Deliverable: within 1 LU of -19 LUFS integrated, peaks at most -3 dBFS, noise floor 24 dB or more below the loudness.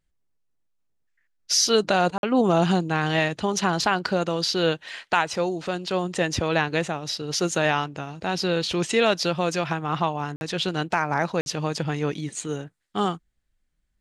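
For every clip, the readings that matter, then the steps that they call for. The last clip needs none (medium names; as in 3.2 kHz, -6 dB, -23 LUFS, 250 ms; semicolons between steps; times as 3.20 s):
dropouts 3; longest dropout 51 ms; loudness -24.5 LUFS; peak level -6.0 dBFS; loudness target -19.0 LUFS
-> interpolate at 2.18/10.36/11.41 s, 51 ms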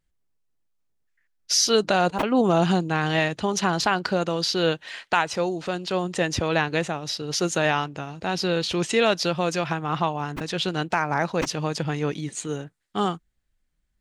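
dropouts 0; loudness -24.5 LUFS; peak level -6.0 dBFS; loudness target -19.0 LUFS
-> trim +5.5 dB; peak limiter -3 dBFS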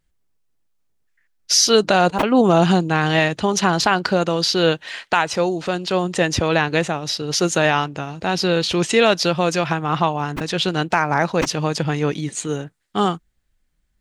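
loudness -19.0 LUFS; peak level -3.0 dBFS; noise floor -68 dBFS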